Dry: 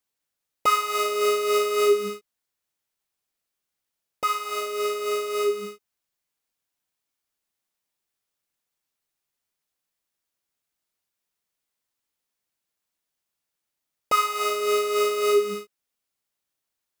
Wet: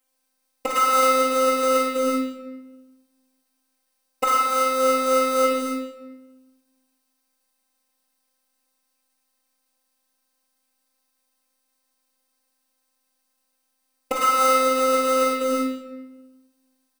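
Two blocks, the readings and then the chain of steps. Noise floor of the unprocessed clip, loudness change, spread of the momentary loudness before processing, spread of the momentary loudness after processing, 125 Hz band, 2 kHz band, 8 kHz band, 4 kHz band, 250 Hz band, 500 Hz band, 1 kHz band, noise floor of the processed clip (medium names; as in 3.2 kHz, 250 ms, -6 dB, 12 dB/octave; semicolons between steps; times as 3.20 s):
-84 dBFS, +3.5 dB, 9 LU, 14 LU, no reading, +3.0 dB, +4.5 dB, +0.5 dB, +13.0 dB, +1.5 dB, +5.5 dB, -74 dBFS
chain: bass shelf 140 Hz -9 dB; comb 4.2 ms, depth 69%; dynamic bell 9.7 kHz, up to -5 dB, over -44 dBFS, Q 0.7; compressor with a negative ratio -23 dBFS, ratio -0.5; robot voice 261 Hz; simulated room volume 560 m³, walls mixed, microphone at 2 m; trim +5 dB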